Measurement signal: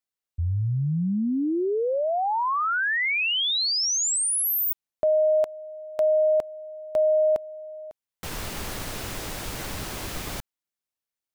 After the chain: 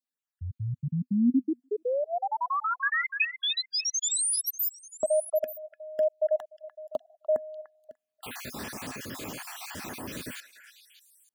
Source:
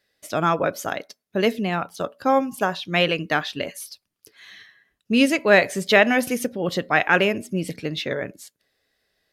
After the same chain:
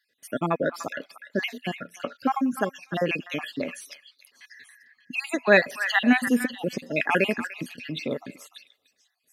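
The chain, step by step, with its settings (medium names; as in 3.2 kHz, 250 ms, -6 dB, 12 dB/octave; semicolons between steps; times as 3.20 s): random holes in the spectrogram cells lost 53%; high-pass 120 Hz 12 dB/octave; small resonant body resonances 250/1700/2500 Hz, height 9 dB, ringing for 60 ms; on a send: repeats whose band climbs or falls 296 ms, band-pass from 1.5 kHz, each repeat 1.4 oct, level -7 dB; on the sum: trim -2.5 dB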